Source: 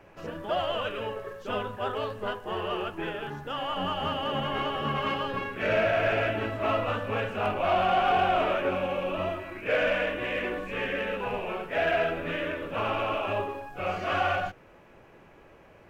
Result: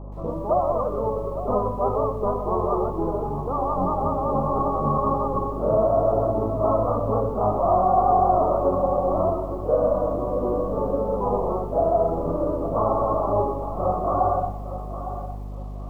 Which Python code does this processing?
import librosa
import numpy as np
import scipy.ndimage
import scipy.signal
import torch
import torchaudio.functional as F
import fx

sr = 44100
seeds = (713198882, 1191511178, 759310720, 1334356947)

p1 = fx.rider(x, sr, range_db=3, speed_s=0.5)
p2 = x + F.gain(torch.from_numpy(p1), 2.0).numpy()
p3 = scipy.signal.sosfilt(scipy.signal.butter(16, 1200.0, 'lowpass', fs=sr, output='sos'), p2)
p4 = fx.add_hum(p3, sr, base_hz=50, snr_db=13)
p5 = fx.echo_feedback(p4, sr, ms=860, feedback_pct=28, wet_db=-12)
y = fx.echo_crushed(p5, sr, ms=122, feedback_pct=35, bits=8, wet_db=-15)